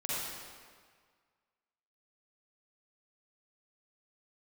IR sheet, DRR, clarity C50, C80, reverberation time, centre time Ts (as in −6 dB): −8.5 dB, −6.5 dB, −2.0 dB, 1.8 s, 139 ms